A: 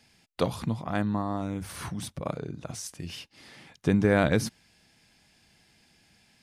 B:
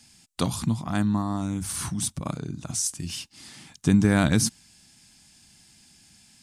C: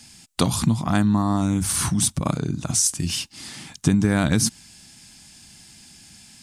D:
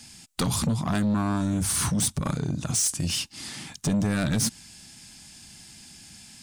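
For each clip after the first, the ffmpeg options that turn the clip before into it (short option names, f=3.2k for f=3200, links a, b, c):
-af "equalizer=f=250:t=o:w=1:g=3,equalizer=f=500:t=o:w=1:g=-12,equalizer=f=2k:t=o:w=1:g=-5,equalizer=f=8k:t=o:w=1:g=11,volume=4.5dB"
-af "acompressor=threshold=-22dB:ratio=10,volume=8dB"
-af "asoftclip=type=tanh:threshold=-19.5dB"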